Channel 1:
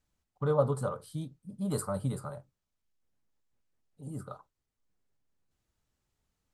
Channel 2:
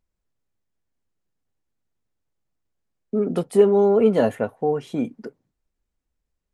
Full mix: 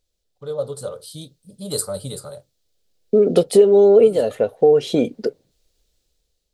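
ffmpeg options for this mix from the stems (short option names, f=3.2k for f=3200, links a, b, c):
-filter_complex "[0:a]highshelf=f=2.7k:g=10,volume=-5.5dB,asplit=2[a][b];[1:a]acompressor=threshold=-21dB:ratio=6,volume=2.5dB[c];[b]apad=whole_len=287994[d];[c][d]sidechaincompress=threshold=-45dB:ratio=8:attack=16:release=973[e];[a][e]amix=inputs=2:normalize=0,equalizer=f=125:t=o:w=1:g=-4,equalizer=f=250:t=o:w=1:g=-6,equalizer=f=500:t=o:w=1:g=9,equalizer=f=1k:t=o:w=1:g=-10,equalizer=f=2k:t=o:w=1:g=-4,equalizer=f=4k:t=o:w=1:g=9,dynaudnorm=f=240:g=7:m=10dB"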